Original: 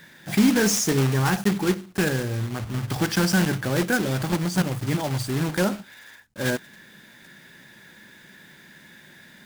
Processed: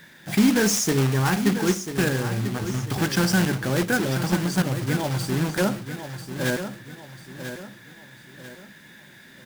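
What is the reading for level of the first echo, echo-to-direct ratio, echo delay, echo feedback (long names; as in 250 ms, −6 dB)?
−10.0 dB, −9.5 dB, 992 ms, 39%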